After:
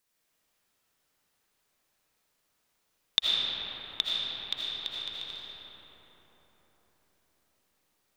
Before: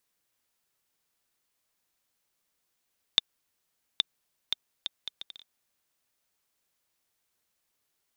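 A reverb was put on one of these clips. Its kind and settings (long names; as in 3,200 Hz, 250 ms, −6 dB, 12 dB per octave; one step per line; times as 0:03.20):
comb and all-pass reverb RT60 4.9 s, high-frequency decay 0.4×, pre-delay 40 ms, DRR −6.5 dB
level −1 dB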